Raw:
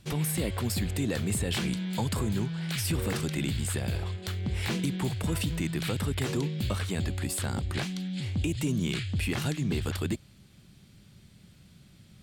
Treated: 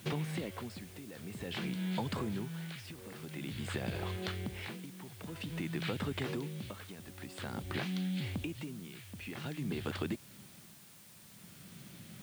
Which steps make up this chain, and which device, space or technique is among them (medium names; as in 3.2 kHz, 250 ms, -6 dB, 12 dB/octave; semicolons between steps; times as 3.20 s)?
medium wave at night (band-pass 150–3600 Hz; compression, threshold -39 dBFS, peak gain reduction 12.5 dB; tremolo 0.5 Hz, depth 79%; whistle 9 kHz -73 dBFS; white noise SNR 18 dB); trim +6 dB